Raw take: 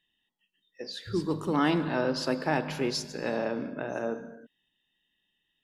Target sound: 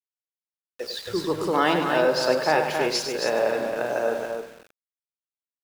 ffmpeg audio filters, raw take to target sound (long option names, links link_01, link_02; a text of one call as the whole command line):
ffmpeg -i in.wav -af "lowshelf=frequency=350:width_type=q:width=1.5:gain=-8,aeval=exprs='val(0)*gte(abs(val(0)),0.00596)':channel_layout=same,aecho=1:1:99.13|271.1:0.398|0.501,volume=6dB" out.wav